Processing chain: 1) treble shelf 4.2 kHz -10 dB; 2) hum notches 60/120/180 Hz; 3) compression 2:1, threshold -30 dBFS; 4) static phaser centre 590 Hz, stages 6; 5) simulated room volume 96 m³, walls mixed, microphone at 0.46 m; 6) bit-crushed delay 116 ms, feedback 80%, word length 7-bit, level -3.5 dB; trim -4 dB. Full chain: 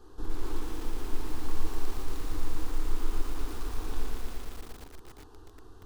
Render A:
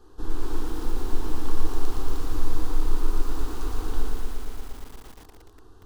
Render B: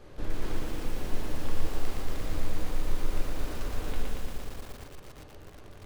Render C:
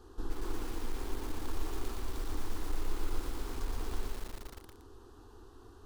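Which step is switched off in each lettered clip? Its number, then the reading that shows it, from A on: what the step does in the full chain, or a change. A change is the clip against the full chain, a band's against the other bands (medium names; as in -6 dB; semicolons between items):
3, mean gain reduction 4.0 dB; 4, 2 kHz band +2.0 dB; 5, momentary loudness spread change +2 LU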